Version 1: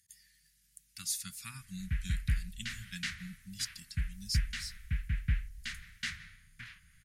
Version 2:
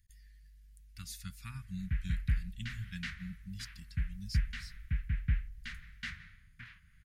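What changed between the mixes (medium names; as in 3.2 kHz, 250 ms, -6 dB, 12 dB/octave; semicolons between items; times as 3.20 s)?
speech: remove high-pass 160 Hz 12 dB/octave; master: add peaking EQ 8.9 kHz -13.5 dB 2.2 oct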